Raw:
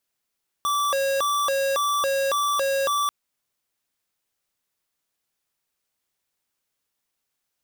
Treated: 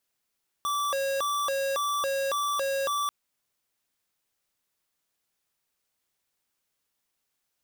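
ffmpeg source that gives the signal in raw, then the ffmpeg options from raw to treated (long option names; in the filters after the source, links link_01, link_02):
-f lavfi -i "aevalsrc='0.0708*(2*lt(mod((853*t+307/1.8*(0.5-abs(mod(1.8*t,1)-0.5))),1),0.5)-1)':duration=2.44:sample_rate=44100"
-af "alimiter=level_in=4dB:limit=-24dB:level=0:latency=1:release=24,volume=-4dB"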